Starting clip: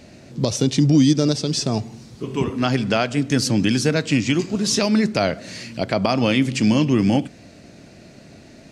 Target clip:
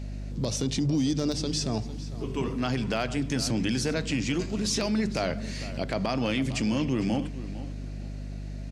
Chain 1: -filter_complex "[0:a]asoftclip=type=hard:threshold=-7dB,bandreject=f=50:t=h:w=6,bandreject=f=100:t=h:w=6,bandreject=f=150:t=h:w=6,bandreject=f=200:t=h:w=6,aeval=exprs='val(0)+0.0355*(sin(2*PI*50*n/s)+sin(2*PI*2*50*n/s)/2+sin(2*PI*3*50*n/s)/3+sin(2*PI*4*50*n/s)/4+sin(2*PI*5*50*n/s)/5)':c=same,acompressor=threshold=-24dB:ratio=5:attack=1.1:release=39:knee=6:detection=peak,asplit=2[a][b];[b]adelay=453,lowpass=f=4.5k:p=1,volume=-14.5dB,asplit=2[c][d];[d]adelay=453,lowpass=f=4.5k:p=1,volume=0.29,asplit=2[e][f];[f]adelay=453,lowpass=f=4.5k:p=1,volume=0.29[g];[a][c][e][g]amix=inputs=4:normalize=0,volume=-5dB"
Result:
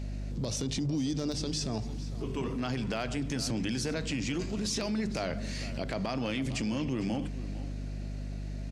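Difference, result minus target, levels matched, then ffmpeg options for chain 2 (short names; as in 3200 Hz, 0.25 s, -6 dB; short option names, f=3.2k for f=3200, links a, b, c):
compressor: peak gain reduction +5.5 dB
-filter_complex "[0:a]asoftclip=type=hard:threshold=-7dB,bandreject=f=50:t=h:w=6,bandreject=f=100:t=h:w=6,bandreject=f=150:t=h:w=6,bandreject=f=200:t=h:w=6,aeval=exprs='val(0)+0.0355*(sin(2*PI*50*n/s)+sin(2*PI*2*50*n/s)/2+sin(2*PI*3*50*n/s)/3+sin(2*PI*4*50*n/s)/4+sin(2*PI*5*50*n/s)/5)':c=same,acompressor=threshold=-17dB:ratio=5:attack=1.1:release=39:knee=6:detection=peak,asplit=2[a][b];[b]adelay=453,lowpass=f=4.5k:p=1,volume=-14.5dB,asplit=2[c][d];[d]adelay=453,lowpass=f=4.5k:p=1,volume=0.29,asplit=2[e][f];[f]adelay=453,lowpass=f=4.5k:p=1,volume=0.29[g];[a][c][e][g]amix=inputs=4:normalize=0,volume=-5dB"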